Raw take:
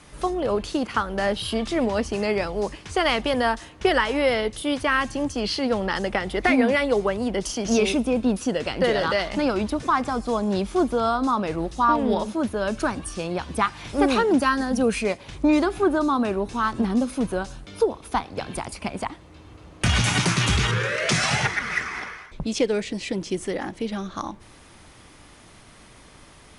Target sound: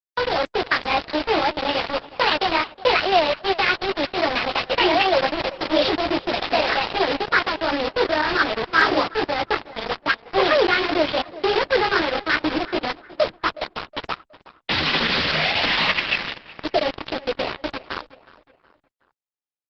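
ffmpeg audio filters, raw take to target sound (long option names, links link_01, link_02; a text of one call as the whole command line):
ffmpeg -i in.wav -filter_complex "[0:a]acrossover=split=210 3100:gain=0.178 1 0.2[link_01][link_02][link_03];[link_01][link_02][link_03]amix=inputs=3:normalize=0,acontrast=51,highshelf=frequency=2600:gain=6.5,bandreject=frequency=50:width_type=h:width=6,bandreject=frequency=100:width_type=h:width=6,bandreject=frequency=150:width_type=h:width=6,bandreject=frequency=200:width_type=h:width=6,bandreject=frequency=250:width_type=h:width=6,bandreject=frequency=300:width_type=h:width=6,bandreject=frequency=350:width_type=h:width=6,flanger=delay=17.5:depth=7.9:speed=1.9,aresample=8000,acrusher=bits=3:mix=0:aa=0.000001,aresample=44100,asoftclip=type=hard:threshold=-5dB,asplit=2[link_04][link_05];[link_05]adelay=496,lowpass=frequency=2200:poles=1,volume=-18dB,asplit=2[link_06][link_07];[link_07]adelay=496,lowpass=frequency=2200:poles=1,volume=0.42,asplit=2[link_08][link_09];[link_09]adelay=496,lowpass=frequency=2200:poles=1,volume=0.42[link_10];[link_04][link_06][link_08][link_10]amix=inputs=4:normalize=0,asetrate=59535,aresample=44100" -ar 48000 -c:a libopus -b:a 10k out.opus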